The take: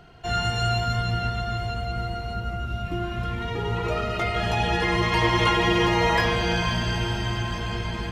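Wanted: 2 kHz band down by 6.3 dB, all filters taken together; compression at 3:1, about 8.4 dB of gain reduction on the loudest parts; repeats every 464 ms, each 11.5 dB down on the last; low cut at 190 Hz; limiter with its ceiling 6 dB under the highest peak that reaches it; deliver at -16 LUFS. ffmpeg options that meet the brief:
-af "highpass=190,equalizer=f=2000:t=o:g=-8,acompressor=threshold=0.0282:ratio=3,alimiter=level_in=1.12:limit=0.0631:level=0:latency=1,volume=0.891,aecho=1:1:464|928|1392:0.266|0.0718|0.0194,volume=7.94"

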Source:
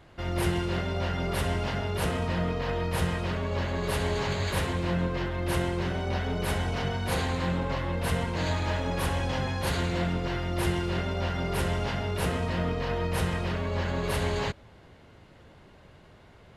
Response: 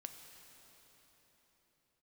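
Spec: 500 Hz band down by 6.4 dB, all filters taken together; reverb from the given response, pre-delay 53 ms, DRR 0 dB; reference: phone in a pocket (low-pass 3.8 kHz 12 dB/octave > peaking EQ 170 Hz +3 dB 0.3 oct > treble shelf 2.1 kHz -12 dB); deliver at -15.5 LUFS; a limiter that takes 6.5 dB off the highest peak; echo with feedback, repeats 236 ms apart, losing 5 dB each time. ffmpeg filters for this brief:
-filter_complex "[0:a]equalizer=f=500:t=o:g=-7.5,alimiter=limit=0.0794:level=0:latency=1,aecho=1:1:236|472|708|944|1180|1416|1652:0.562|0.315|0.176|0.0988|0.0553|0.031|0.0173,asplit=2[s0][s1];[1:a]atrim=start_sample=2205,adelay=53[s2];[s1][s2]afir=irnorm=-1:irlink=0,volume=1.68[s3];[s0][s3]amix=inputs=2:normalize=0,lowpass=3800,equalizer=f=170:t=o:w=0.3:g=3,highshelf=f=2100:g=-12,volume=4.73"

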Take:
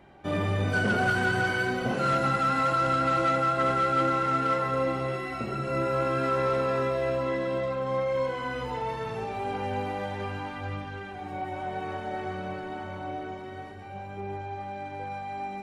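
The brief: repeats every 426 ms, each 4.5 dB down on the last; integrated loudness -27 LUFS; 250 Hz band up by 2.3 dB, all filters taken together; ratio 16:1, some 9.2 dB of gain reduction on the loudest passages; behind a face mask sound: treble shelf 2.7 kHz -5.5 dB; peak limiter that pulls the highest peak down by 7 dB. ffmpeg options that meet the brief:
-af "equalizer=f=250:t=o:g=3,acompressor=threshold=0.0316:ratio=16,alimiter=level_in=1.5:limit=0.0631:level=0:latency=1,volume=0.668,highshelf=f=2700:g=-5.5,aecho=1:1:426|852|1278|1704|2130|2556|2982|3408|3834:0.596|0.357|0.214|0.129|0.0772|0.0463|0.0278|0.0167|0.01,volume=2.24"

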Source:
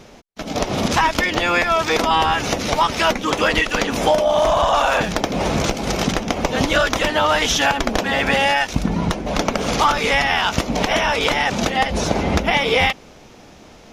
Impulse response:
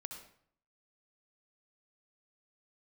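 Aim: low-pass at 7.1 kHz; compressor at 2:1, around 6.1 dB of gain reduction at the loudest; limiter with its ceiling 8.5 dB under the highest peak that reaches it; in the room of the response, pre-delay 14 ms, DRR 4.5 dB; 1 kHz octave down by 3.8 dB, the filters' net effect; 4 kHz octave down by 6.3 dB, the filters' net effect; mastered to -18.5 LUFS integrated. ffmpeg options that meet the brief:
-filter_complex "[0:a]lowpass=7100,equalizer=f=1000:t=o:g=-4.5,equalizer=f=4000:t=o:g=-8.5,acompressor=threshold=0.0501:ratio=2,alimiter=limit=0.141:level=0:latency=1,asplit=2[s0][s1];[1:a]atrim=start_sample=2205,adelay=14[s2];[s1][s2]afir=irnorm=-1:irlink=0,volume=0.841[s3];[s0][s3]amix=inputs=2:normalize=0,volume=2.37"

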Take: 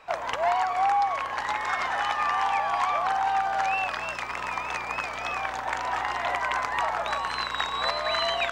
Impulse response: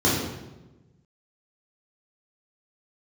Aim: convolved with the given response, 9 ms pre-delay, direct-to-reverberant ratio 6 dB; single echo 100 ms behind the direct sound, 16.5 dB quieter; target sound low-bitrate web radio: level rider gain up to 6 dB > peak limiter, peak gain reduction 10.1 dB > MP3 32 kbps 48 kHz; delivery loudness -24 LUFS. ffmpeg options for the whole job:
-filter_complex "[0:a]aecho=1:1:100:0.15,asplit=2[s0][s1];[1:a]atrim=start_sample=2205,adelay=9[s2];[s1][s2]afir=irnorm=-1:irlink=0,volume=0.0668[s3];[s0][s3]amix=inputs=2:normalize=0,dynaudnorm=m=2,alimiter=limit=0.0794:level=0:latency=1,volume=2.11" -ar 48000 -c:a libmp3lame -b:a 32k

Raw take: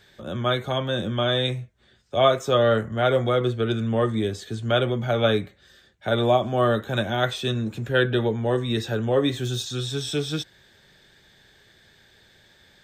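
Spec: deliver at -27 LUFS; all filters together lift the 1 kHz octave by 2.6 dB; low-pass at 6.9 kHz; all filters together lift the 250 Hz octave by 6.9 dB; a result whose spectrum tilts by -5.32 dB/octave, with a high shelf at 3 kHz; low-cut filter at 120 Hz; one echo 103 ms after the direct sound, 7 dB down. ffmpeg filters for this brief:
-af "highpass=120,lowpass=6900,equalizer=f=250:t=o:g=8.5,equalizer=f=1000:t=o:g=4,highshelf=f=3000:g=-5.5,aecho=1:1:103:0.447,volume=0.473"

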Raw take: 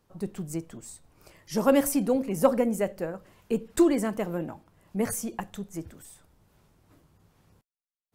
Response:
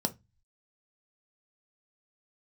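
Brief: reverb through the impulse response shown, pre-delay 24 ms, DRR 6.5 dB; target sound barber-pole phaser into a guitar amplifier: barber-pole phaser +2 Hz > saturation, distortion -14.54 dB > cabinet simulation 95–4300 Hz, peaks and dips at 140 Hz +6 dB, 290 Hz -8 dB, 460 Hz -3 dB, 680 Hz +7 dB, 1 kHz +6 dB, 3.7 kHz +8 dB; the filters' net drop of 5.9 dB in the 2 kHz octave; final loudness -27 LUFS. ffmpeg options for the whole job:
-filter_complex "[0:a]equalizer=f=2000:t=o:g=-8.5,asplit=2[s0][s1];[1:a]atrim=start_sample=2205,adelay=24[s2];[s1][s2]afir=irnorm=-1:irlink=0,volume=0.266[s3];[s0][s3]amix=inputs=2:normalize=0,asplit=2[s4][s5];[s5]afreqshift=2[s6];[s4][s6]amix=inputs=2:normalize=1,asoftclip=threshold=0.126,highpass=95,equalizer=f=140:t=q:w=4:g=6,equalizer=f=290:t=q:w=4:g=-8,equalizer=f=460:t=q:w=4:g=-3,equalizer=f=680:t=q:w=4:g=7,equalizer=f=1000:t=q:w=4:g=6,equalizer=f=3700:t=q:w=4:g=8,lowpass=f=4300:w=0.5412,lowpass=f=4300:w=1.3066,volume=1.78"

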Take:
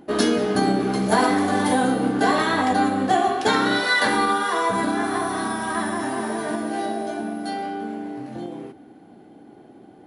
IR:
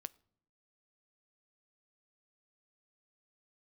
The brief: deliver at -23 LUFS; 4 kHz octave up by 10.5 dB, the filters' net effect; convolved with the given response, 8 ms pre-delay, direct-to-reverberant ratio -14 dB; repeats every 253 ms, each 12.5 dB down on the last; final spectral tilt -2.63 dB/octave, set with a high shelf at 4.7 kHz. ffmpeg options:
-filter_complex "[0:a]equalizer=f=4000:t=o:g=8.5,highshelf=f=4700:g=7.5,aecho=1:1:253|506|759:0.237|0.0569|0.0137,asplit=2[s0][s1];[1:a]atrim=start_sample=2205,adelay=8[s2];[s1][s2]afir=irnorm=-1:irlink=0,volume=8.41[s3];[s0][s3]amix=inputs=2:normalize=0,volume=0.126"

